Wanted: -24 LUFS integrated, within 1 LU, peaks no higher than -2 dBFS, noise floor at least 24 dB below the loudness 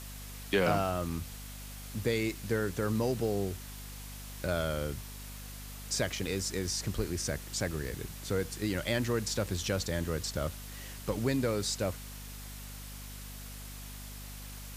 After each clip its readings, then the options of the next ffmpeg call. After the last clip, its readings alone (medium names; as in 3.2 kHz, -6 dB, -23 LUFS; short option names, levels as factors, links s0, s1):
hum 50 Hz; highest harmonic 250 Hz; hum level -43 dBFS; noise floor -45 dBFS; noise floor target -59 dBFS; loudness -34.5 LUFS; peak level -15.5 dBFS; loudness target -24.0 LUFS
-> -af "bandreject=f=50:t=h:w=4,bandreject=f=100:t=h:w=4,bandreject=f=150:t=h:w=4,bandreject=f=200:t=h:w=4,bandreject=f=250:t=h:w=4"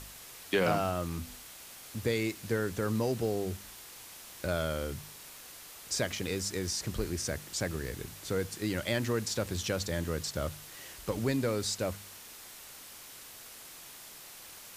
hum not found; noise floor -49 dBFS; noise floor target -58 dBFS
-> -af "afftdn=nr=9:nf=-49"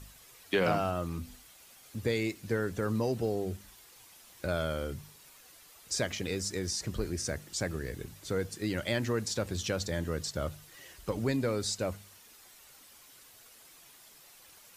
noise floor -57 dBFS; noise floor target -58 dBFS
-> -af "afftdn=nr=6:nf=-57"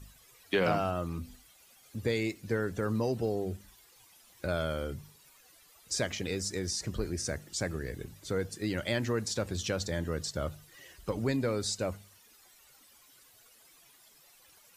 noise floor -61 dBFS; loudness -33.5 LUFS; peak level -16.0 dBFS; loudness target -24.0 LUFS
-> -af "volume=2.99"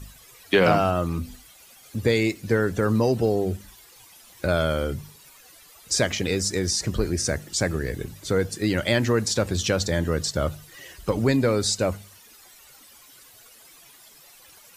loudness -24.0 LUFS; peak level -6.5 dBFS; noise floor -51 dBFS